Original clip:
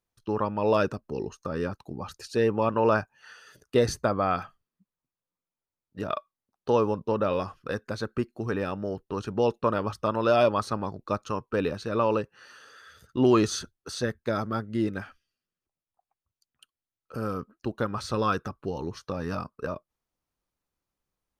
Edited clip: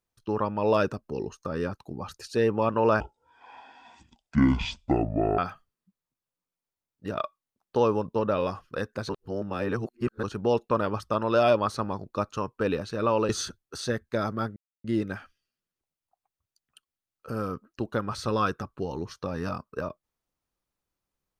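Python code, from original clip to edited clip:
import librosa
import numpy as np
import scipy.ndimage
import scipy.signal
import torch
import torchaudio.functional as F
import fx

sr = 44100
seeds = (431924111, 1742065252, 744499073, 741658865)

y = fx.edit(x, sr, fx.speed_span(start_s=3.0, length_s=1.31, speed=0.55),
    fx.reverse_span(start_s=8.02, length_s=1.14),
    fx.cut(start_s=12.22, length_s=1.21),
    fx.insert_silence(at_s=14.7, length_s=0.28), tone=tone)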